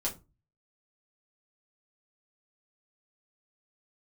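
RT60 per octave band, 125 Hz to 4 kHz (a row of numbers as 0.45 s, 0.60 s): 0.55 s, 0.35 s, 0.30 s, 0.25 s, 0.20 s, 0.15 s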